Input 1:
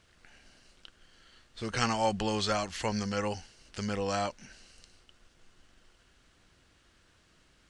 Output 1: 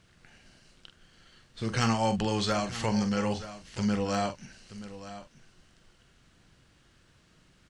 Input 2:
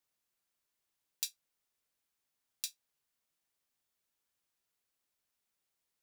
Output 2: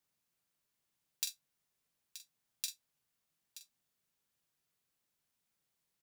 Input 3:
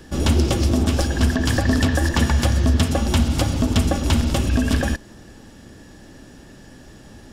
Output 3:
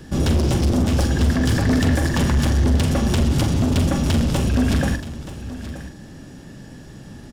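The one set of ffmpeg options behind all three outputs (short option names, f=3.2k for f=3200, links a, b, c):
-filter_complex "[0:a]equalizer=f=150:t=o:w=1.2:g=8.5,volume=15.5dB,asoftclip=hard,volume=-15.5dB,asplit=2[a][b];[b]adelay=44,volume=-9dB[c];[a][c]amix=inputs=2:normalize=0,aecho=1:1:927:0.2"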